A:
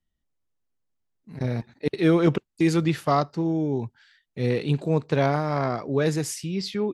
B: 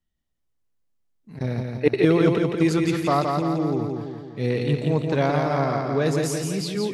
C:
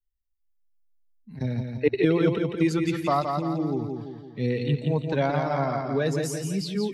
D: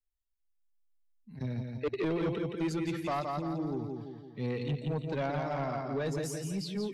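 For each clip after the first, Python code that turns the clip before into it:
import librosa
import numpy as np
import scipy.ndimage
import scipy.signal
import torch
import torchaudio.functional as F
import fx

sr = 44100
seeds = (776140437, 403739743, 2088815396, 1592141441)

y1 = fx.spec_box(x, sr, start_s=1.79, length_s=0.22, low_hz=290.0, high_hz=3000.0, gain_db=8)
y1 = fx.echo_feedback(y1, sr, ms=170, feedback_pct=55, wet_db=-4.0)
y2 = fx.bin_expand(y1, sr, power=1.5)
y2 = fx.band_squash(y2, sr, depth_pct=40)
y3 = 10.0 ** (-20.0 / 20.0) * np.tanh(y2 / 10.0 ** (-20.0 / 20.0))
y3 = F.gain(torch.from_numpy(y3), -6.0).numpy()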